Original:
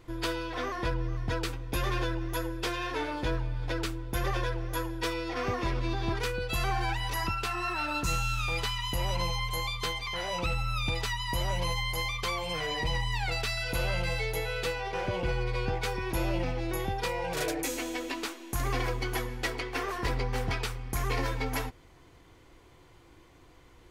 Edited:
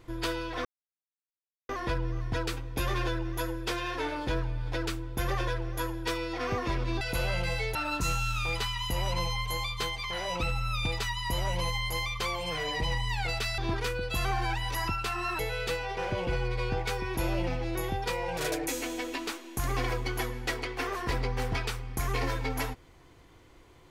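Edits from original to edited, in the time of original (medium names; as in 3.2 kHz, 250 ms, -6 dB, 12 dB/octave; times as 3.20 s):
0.65 s: insert silence 1.04 s
5.97–7.78 s: swap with 13.61–14.35 s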